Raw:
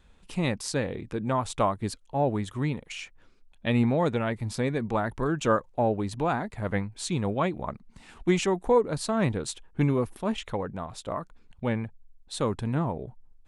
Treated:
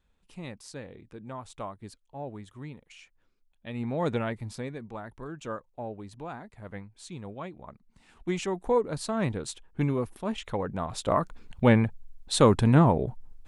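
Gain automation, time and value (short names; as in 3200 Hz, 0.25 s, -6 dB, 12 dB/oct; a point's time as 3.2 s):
3.73 s -13 dB
4.12 s -0.5 dB
4.89 s -12.5 dB
7.65 s -12.5 dB
8.74 s -3 dB
10.34 s -3 dB
11.21 s +8.5 dB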